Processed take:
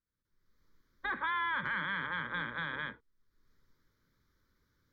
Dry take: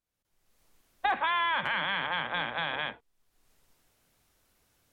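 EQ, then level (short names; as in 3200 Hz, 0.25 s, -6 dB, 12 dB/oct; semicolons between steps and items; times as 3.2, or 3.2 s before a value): high shelf 3100 Hz -11 dB; fixed phaser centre 2700 Hz, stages 6; 0.0 dB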